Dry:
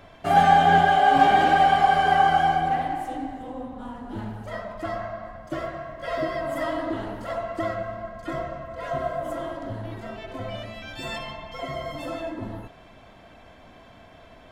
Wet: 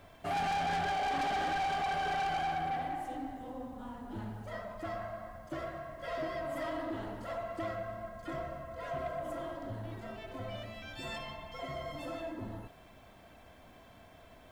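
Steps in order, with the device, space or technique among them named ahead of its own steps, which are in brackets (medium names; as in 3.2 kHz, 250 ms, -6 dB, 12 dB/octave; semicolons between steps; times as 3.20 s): open-reel tape (saturation -23 dBFS, distortion -6 dB; peaking EQ 75 Hz +2.5 dB; white noise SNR 36 dB); trim -7.5 dB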